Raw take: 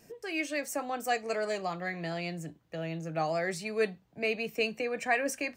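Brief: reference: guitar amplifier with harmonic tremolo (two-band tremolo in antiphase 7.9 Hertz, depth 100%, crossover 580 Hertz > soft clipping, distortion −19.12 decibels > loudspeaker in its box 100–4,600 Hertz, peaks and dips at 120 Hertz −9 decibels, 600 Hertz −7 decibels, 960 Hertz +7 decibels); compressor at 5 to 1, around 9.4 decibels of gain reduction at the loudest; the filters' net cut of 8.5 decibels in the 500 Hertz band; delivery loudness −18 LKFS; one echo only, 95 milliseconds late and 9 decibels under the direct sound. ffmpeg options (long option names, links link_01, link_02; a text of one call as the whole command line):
ffmpeg -i in.wav -filter_complex "[0:a]equalizer=frequency=500:width_type=o:gain=-8,acompressor=threshold=-35dB:ratio=5,aecho=1:1:95:0.355,acrossover=split=580[link_01][link_02];[link_01]aeval=exprs='val(0)*(1-1/2+1/2*cos(2*PI*7.9*n/s))':channel_layout=same[link_03];[link_02]aeval=exprs='val(0)*(1-1/2-1/2*cos(2*PI*7.9*n/s))':channel_layout=same[link_04];[link_03][link_04]amix=inputs=2:normalize=0,asoftclip=threshold=-33dB,highpass=100,equalizer=frequency=120:width_type=q:width=4:gain=-9,equalizer=frequency=600:width_type=q:width=4:gain=-7,equalizer=frequency=960:width_type=q:width=4:gain=7,lowpass=frequency=4600:width=0.5412,lowpass=frequency=4600:width=1.3066,volume=27dB" out.wav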